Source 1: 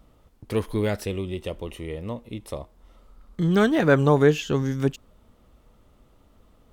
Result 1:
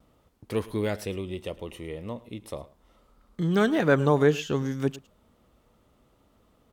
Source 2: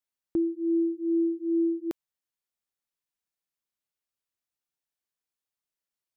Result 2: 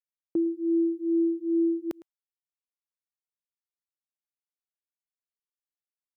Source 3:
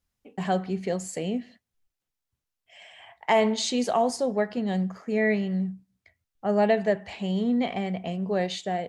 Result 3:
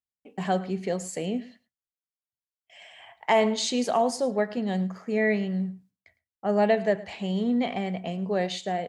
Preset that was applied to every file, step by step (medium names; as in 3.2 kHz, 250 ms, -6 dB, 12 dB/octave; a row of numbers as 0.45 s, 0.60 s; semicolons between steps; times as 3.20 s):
gate with hold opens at -52 dBFS; high-pass 99 Hz 6 dB/octave; delay 108 ms -19.5 dB; normalise loudness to -27 LUFS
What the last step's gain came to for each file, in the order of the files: -2.5 dB, +0.5 dB, 0.0 dB